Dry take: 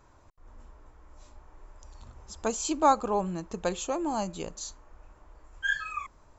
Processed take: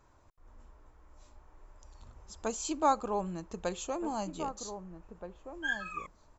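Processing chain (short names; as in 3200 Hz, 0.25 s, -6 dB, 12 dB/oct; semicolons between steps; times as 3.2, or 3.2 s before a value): outdoor echo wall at 270 m, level -9 dB; gain -5 dB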